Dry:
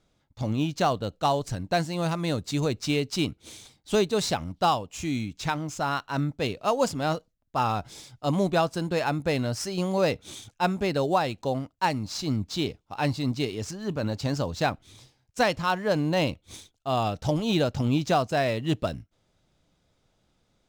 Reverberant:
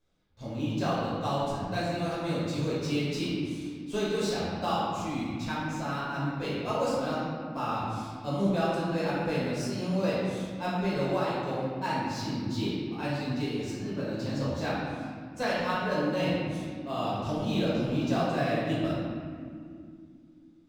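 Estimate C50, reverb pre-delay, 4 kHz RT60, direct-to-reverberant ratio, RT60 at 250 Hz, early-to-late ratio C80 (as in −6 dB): −2.5 dB, 4 ms, 1.3 s, −9.5 dB, 4.1 s, 0.0 dB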